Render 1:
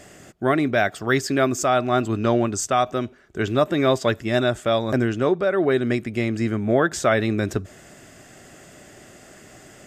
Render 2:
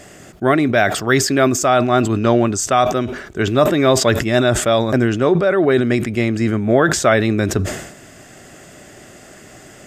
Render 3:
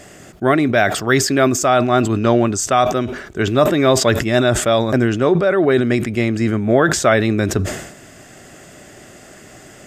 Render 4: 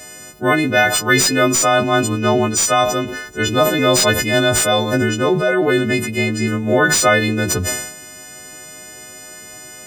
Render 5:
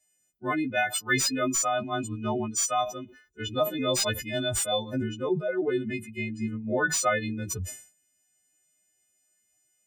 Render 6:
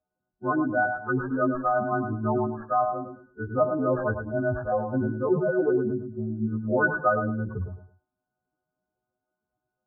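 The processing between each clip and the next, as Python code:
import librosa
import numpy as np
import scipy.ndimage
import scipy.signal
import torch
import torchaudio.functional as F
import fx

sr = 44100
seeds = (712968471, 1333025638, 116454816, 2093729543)

y1 = fx.sustainer(x, sr, db_per_s=69.0)
y1 = y1 * 10.0 ** (5.0 / 20.0)
y2 = y1
y3 = fx.freq_snap(y2, sr, grid_st=3)
y3 = fx.slew_limit(y3, sr, full_power_hz=1600.0)
y3 = y3 * 10.0 ** (-1.5 / 20.0)
y4 = fx.bin_expand(y3, sr, power=2.0)
y4 = y4 * 10.0 ** (-8.0 / 20.0)
y5 = fx.brickwall_lowpass(y4, sr, high_hz=1700.0)
y5 = fx.echo_feedback(y5, sr, ms=108, feedback_pct=25, wet_db=-8)
y5 = y5 * 10.0 ** (3.0 / 20.0)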